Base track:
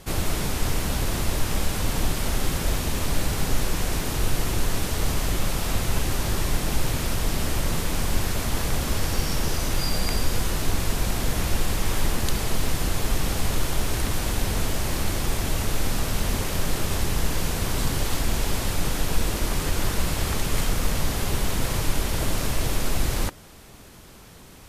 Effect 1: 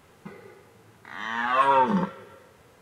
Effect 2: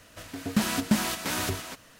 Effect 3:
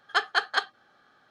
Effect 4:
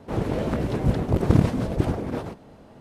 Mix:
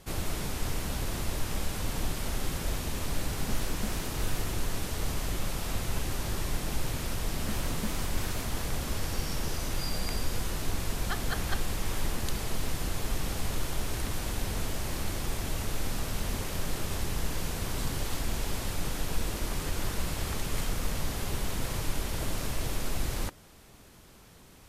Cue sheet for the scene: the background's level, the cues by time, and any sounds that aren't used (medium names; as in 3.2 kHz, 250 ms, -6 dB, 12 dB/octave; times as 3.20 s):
base track -7.5 dB
2.92 s: add 2 -15 dB
6.92 s: add 2 -14 dB
10.95 s: add 3 -12.5 dB
not used: 1, 4